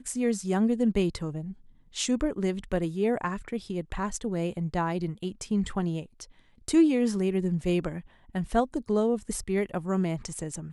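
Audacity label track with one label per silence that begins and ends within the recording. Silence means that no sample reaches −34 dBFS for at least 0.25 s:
1.520000	1.960000	silence
6.230000	6.680000	silence
8.000000	8.350000	silence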